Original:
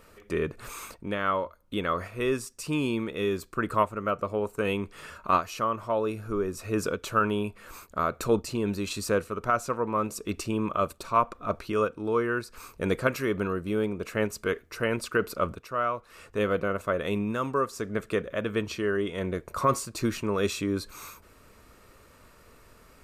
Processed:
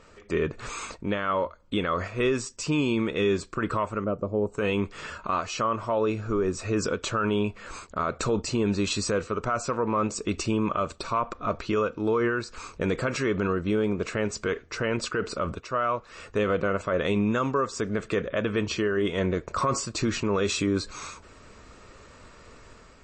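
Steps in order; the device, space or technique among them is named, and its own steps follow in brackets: 4.04–4.54 s: FFT filter 320 Hz 0 dB, 740 Hz -7 dB, 1.9 kHz -21 dB, 8 kHz -16 dB, 12 kHz +13 dB; low-bitrate web radio (level rider gain up to 4 dB; peak limiter -18 dBFS, peak gain reduction 11.5 dB; trim +2 dB; MP3 32 kbps 22.05 kHz)

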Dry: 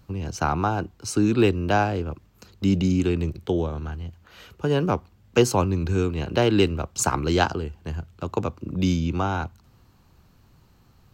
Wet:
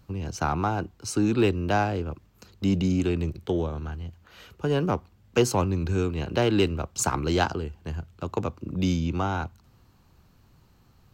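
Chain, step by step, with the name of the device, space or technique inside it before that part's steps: parallel distortion (in parallel at -9.5 dB: hard clipper -19 dBFS, distortion -9 dB); on the sum: trim -4.5 dB

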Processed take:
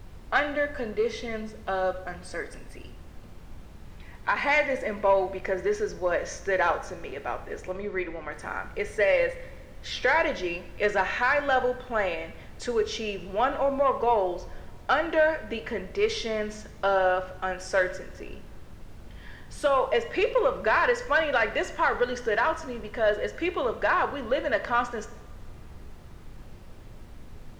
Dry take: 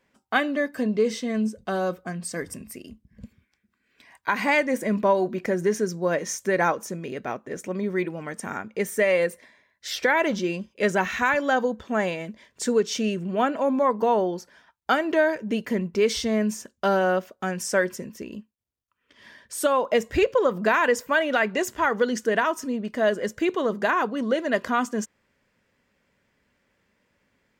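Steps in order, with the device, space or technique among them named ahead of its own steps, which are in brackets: aircraft cabin announcement (band-pass 450–3900 Hz; saturation -12.5 dBFS, distortion -21 dB; brown noise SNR 13 dB); 7.72–8.32 s: Bessel low-pass 4.2 kHz, order 2; two-slope reverb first 0.65 s, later 2.3 s, from -18 dB, DRR 8.5 dB

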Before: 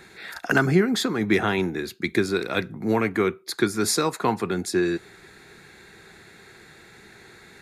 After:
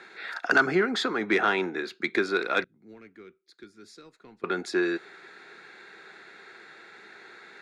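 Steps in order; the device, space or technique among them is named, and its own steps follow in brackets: intercom (band-pass 360–4300 Hz; peaking EQ 1.4 kHz +5 dB 0.37 oct; saturation -10.5 dBFS, distortion -20 dB); 2.64–4.44 s: amplifier tone stack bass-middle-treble 10-0-1

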